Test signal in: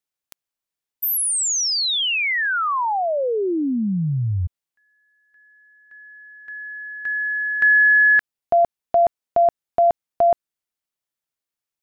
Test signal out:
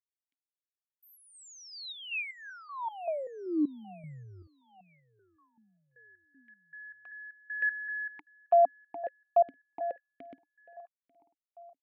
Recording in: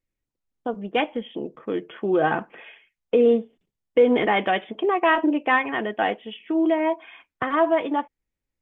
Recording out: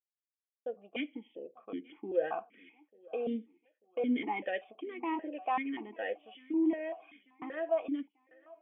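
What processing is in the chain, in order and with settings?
expander -42 dBFS, range -25 dB; on a send: feedback delay 892 ms, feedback 47%, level -23.5 dB; on the sum: stepped vowel filter 5.2 Hz; trim -3 dB

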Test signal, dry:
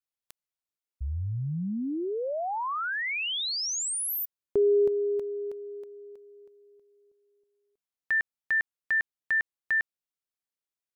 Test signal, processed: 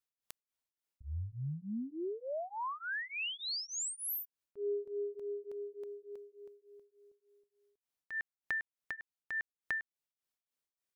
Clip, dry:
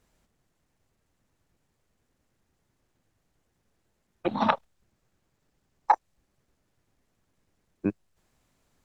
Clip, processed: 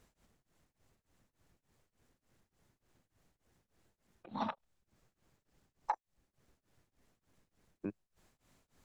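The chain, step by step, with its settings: compression 3:1, threshold -40 dBFS; tremolo of two beating tones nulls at 3.4 Hz; trim +2 dB

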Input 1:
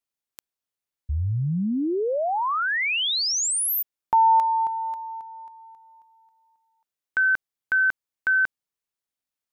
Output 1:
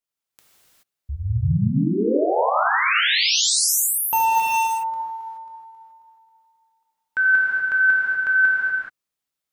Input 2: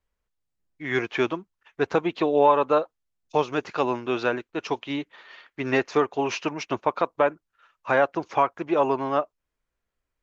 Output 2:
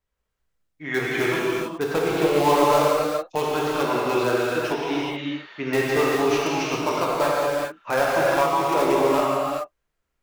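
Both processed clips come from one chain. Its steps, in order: in parallel at -9.5 dB: integer overflow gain 15 dB; on the sum: gated-style reverb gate 450 ms flat, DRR -6 dB; trim -4.5 dB

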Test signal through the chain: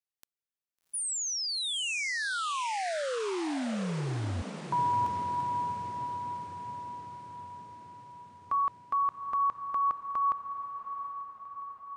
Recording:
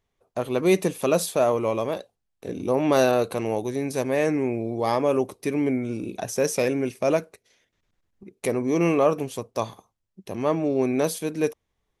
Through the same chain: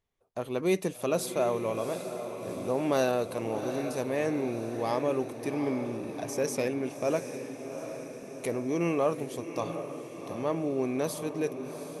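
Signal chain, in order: echo that smears into a reverb 748 ms, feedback 60%, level -9 dB; trim -7 dB

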